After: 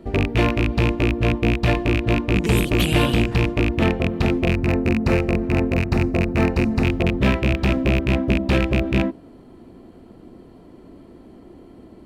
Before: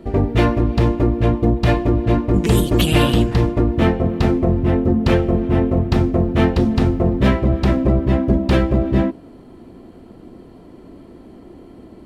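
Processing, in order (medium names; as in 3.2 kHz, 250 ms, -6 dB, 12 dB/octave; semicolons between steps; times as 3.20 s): rattle on loud lows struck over -14 dBFS, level -8 dBFS; 4.51–6.84 s: peaking EQ 3.3 kHz -14.5 dB 0.29 oct; trim -3.5 dB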